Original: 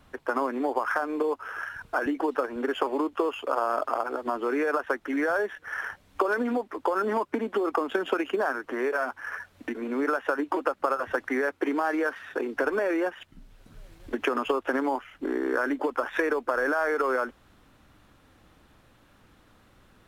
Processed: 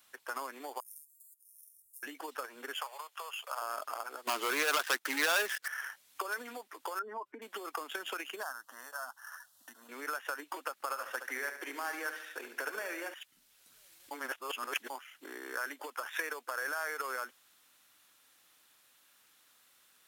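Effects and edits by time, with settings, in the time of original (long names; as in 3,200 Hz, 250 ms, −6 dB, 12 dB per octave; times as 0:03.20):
0:00.80–0:02.03: inverse Chebyshev band-stop filter 350–2,000 Hz, stop band 80 dB
0:02.76–0:03.62: Butterworth high-pass 560 Hz
0:04.27–0:05.68: leveller curve on the samples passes 3
0:06.99–0:07.42: expanding power law on the bin magnitudes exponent 1.6
0:08.43–0:09.89: phaser with its sweep stopped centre 950 Hz, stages 4
0:10.73–0:13.14: repeating echo 72 ms, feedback 54%, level −9.5 dB
0:14.11–0:14.90: reverse
0:15.59–0:17.00: high-pass filter 250 Hz
whole clip: first difference; level +5.5 dB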